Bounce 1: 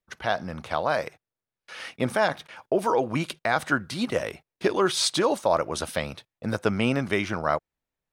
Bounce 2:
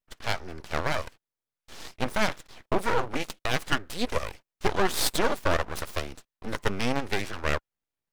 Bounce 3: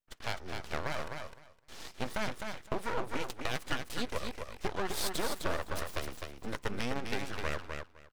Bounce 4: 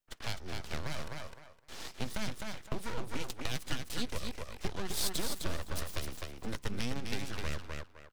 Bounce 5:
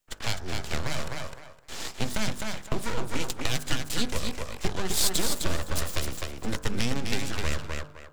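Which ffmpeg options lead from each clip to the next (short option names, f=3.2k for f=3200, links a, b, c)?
-af "aeval=exprs='0.376*(cos(1*acos(clip(val(0)/0.376,-1,1)))-cos(1*PI/2))+0.075*(cos(6*acos(clip(val(0)/0.376,-1,1)))-cos(6*PI/2))':c=same,bandreject=f=720:w=12,aeval=exprs='abs(val(0))':c=same,volume=-2dB"
-filter_complex "[0:a]acompressor=threshold=-27dB:ratio=2.5,asplit=2[a][b];[b]aecho=0:1:256|512|768:0.531|0.0849|0.0136[c];[a][c]amix=inputs=2:normalize=0,volume=-4dB"
-filter_complex "[0:a]acrossover=split=260|3000[a][b][c];[b]acompressor=threshold=-47dB:ratio=3[d];[a][d][c]amix=inputs=3:normalize=0,volume=2.5dB"
-af "equalizer=f=7.3k:t=o:w=0.24:g=5.5,bandreject=f=49.55:t=h:w=4,bandreject=f=99.1:t=h:w=4,bandreject=f=148.65:t=h:w=4,bandreject=f=198.2:t=h:w=4,bandreject=f=247.75:t=h:w=4,bandreject=f=297.3:t=h:w=4,bandreject=f=346.85:t=h:w=4,bandreject=f=396.4:t=h:w=4,bandreject=f=445.95:t=h:w=4,bandreject=f=495.5:t=h:w=4,bandreject=f=545.05:t=h:w=4,bandreject=f=594.6:t=h:w=4,bandreject=f=644.15:t=h:w=4,bandreject=f=693.7:t=h:w=4,bandreject=f=743.25:t=h:w=4,bandreject=f=792.8:t=h:w=4,bandreject=f=842.35:t=h:w=4,bandreject=f=891.9:t=h:w=4,bandreject=f=941.45:t=h:w=4,bandreject=f=991:t=h:w=4,bandreject=f=1.04055k:t=h:w=4,bandreject=f=1.0901k:t=h:w=4,bandreject=f=1.13965k:t=h:w=4,bandreject=f=1.1892k:t=h:w=4,bandreject=f=1.23875k:t=h:w=4,bandreject=f=1.2883k:t=h:w=4,bandreject=f=1.33785k:t=h:w=4,bandreject=f=1.3874k:t=h:w=4,bandreject=f=1.43695k:t=h:w=4,bandreject=f=1.4865k:t=h:w=4,bandreject=f=1.53605k:t=h:w=4,bandreject=f=1.5856k:t=h:w=4,bandreject=f=1.63515k:t=h:w=4,bandreject=f=1.6847k:t=h:w=4,bandreject=f=1.73425k:t=h:w=4,volume=8.5dB"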